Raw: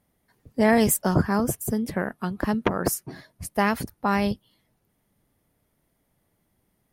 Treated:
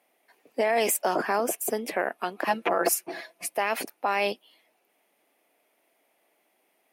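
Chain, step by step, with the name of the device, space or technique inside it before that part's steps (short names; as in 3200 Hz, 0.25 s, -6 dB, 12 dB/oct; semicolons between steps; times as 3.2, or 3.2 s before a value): laptop speaker (HPF 320 Hz 24 dB/oct; bell 700 Hz +7 dB 0.57 oct; bell 2500 Hz +11.5 dB 0.56 oct; limiter -17 dBFS, peak gain reduction 13 dB); 2.46–3.55 comb 5.9 ms, depth 81%; gain +2 dB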